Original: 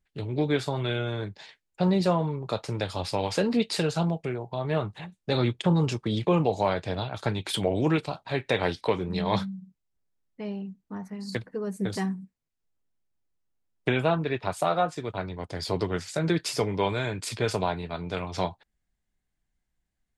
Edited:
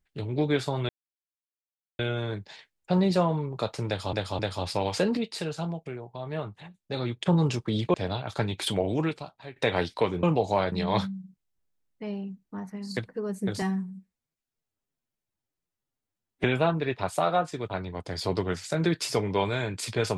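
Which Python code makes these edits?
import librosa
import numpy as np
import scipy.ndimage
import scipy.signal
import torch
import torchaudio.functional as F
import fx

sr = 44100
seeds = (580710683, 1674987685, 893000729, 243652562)

y = fx.edit(x, sr, fx.insert_silence(at_s=0.89, length_s=1.1),
    fx.repeat(start_s=2.77, length_s=0.26, count=3),
    fx.clip_gain(start_s=3.55, length_s=2.04, db=-6.0),
    fx.move(start_s=6.32, length_s=0.49, to_s=9.1),
    fx.fade_out_to(start_s=7.58, length_s=0.85, floor_db=-18.0),
    fx.stretch_span(start_s=12.0, length_s=1.88, factor=1.5), tone=tone)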